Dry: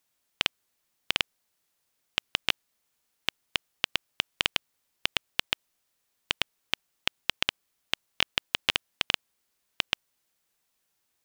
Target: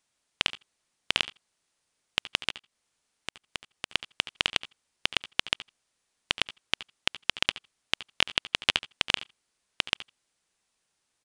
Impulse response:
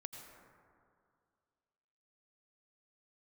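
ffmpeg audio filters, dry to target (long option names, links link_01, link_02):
-filter_complex "[0:a]asplit=3[link_01][link_02][link_03];[link_01]afade=type=out:start_time=2.48:duration=0.02[link_04];[link_02]acompressor=threshold=-34dB:ratio=6,afade=type=in:start_time=2.48:duration=0.02,afade=type=out:start_time=3.89:duration=0.02[link_05];[link_03]afade=type=in:start_time=3.89:duration=0.02[link_06];[link_04][link_05][link_06]amix=inputs=3:normalize=0,aecho=1:1:72:0.141,asplit=2[link_07][link_08];[1:a]atrim=start_sample=2205,atrim=end_sample=3969[link_09];[link_08][link_09]afir=irnorm=-1:irlink=0,volume=5dB[link_10];[link_07][link_10]amix=inputs=2:normalize=0,aresample=22050,aresample=44100,volume=-4.5dB"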